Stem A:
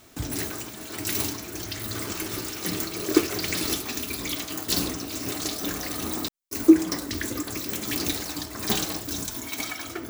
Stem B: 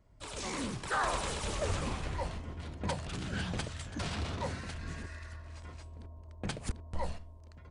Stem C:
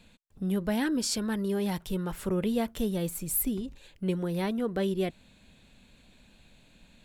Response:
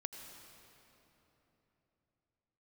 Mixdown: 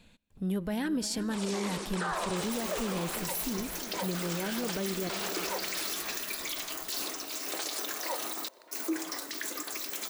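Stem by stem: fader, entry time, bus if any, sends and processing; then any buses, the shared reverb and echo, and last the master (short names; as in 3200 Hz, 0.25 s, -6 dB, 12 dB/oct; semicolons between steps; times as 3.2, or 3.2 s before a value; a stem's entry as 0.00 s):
-3.0 dB, 2.20 s, send -19.5 dB, no echo send, HPF 560 Hz 12 dB/oct
+3.0 dB, 1.10 s, send -9.5 dB, no echo send, Chebyshev band-pass 340–9500 Hz, order 4
-2.5 dB, 0.00 s, send -13 dB, echo send -14.5 dB, dry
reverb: on, RT60 3.5 s, pre-delay 77 ms
echo: feedback echo 0.353 s, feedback 54%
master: limiter -23.5 dBFS, peak gain reduction 10.5 dB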